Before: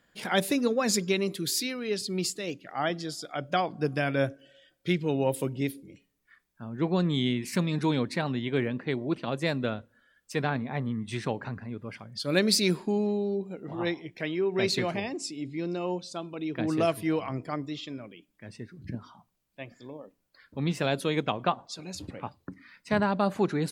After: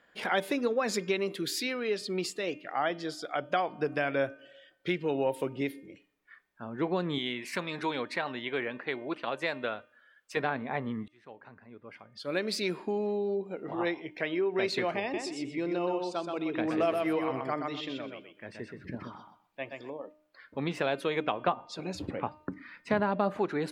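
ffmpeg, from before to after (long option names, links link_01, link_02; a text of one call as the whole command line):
ffmpeg -i in.wav -filter_complex "[0:a]asettb=1/sr,asplit=3[link_01][link_02][link_03];[link_01]atrim=end=7.184[link_04];[link_02]atrim=start=7.18:end=10.37,asetpts=PTS-STARTPTS,afade=type=in:duration=0.004:curve=qsin,afade=type=out:start_time=3.186:duration=0.004:curve=qsin,lowshelf=frequency=480:gain=-10[link_05];[link_03]atrim=start=10.366[link_06];[link_04][link_05]acrossfade=duration=0.004:curve1=hsin:curve2=qsin[link_07];[link_07][link_06]acrossfade=duration=0.004:curve1=qsin:curve2=hsin,asettb=1/sr,asplit=3[link_08][link_09][link_10];[link_08]atrim=end=15.014[link_11];[link_09]atrim=start=15.01:end=19.9,asetpts=PTS-STARTPTS,afade=type=in:duration=0.004:curve=qsin,afade=type=out:start_time=4.886:duration=0.004:curve=qsin,aecho=1:1:125|250|375:0.562|0.112|0.0225,atrim=end_sample=215649[link_12];[link_10]atrim=start=19.896[link_13];[link_11][link_12]acrossfade=duration=0.004:curve1=hsin:curve2=qsin[link_14];[link_14][link_13]acrossfade=duration=0.004:curve1=qsin:curve2=hsin,asettb=1/sr,asplit=3[link_15][link_16][link_17];[link_15]atrim=end=21.474[link_18];[link_16]atrim=start=21.47:end=23.39,asetpts=PTS-STARTPTS,afade=type=in:duration=0.004:curve=qsin,afade=type=out:start_time=1.916:duration=0.004:curve=qsin,lowshelf=frequency=390:gain=9[link_19];[link_17]atrim=start=23.386[link_20];[link_18][link_19]acrossfade=duration=0.004:curve1=hsin:curve2=qsin[link_21];[link_21][link_20]acrossfade=duration=0.004:curve1=qsin:curve2=hsin,asplit=2[link_22][link_23];[link_22]atrim=end=11.08,asetpts=PTS-STARTPTS,afade=type=out:start_time=11.076:duration=0.004:curve=hsin[link_24];[link_23]atrim=start=11.08,asetpts=PTS-STARTPTS,afade=type=in:duration=2.52[link_25];[link_24][link_25]concat=n=2:v=0:a=1,bass=frequency=250:gain=-13,treble=frequency=4000:gain=-13,bandreject=frequency=304.7:width_type=h:width=4,bandreject=frequency=609.4:width_type=h:width=4,bandreject=frequency=914.1:width_type=h:width=4,bandreject=frequency=1218.8:width_type=h:width=4,bandreject=frequency=1523.5:width_type=h:width=4,bandreject=frequency=1828.2:width_type=h:width=4,bandreject=frequency=2132.9:width_type=h:width=4,bandreject=frequency=2437.6:width_type=h:width=4,bandreject=frequency=2742.3:width_type=h:width=4,bandreject=frequency=3047:width_type=h:width=4,bandreject=frequency=3351.7:width_type=h:width=4,acompressor=threshold=-34dB:ratio=2,volume=5dB" out.wav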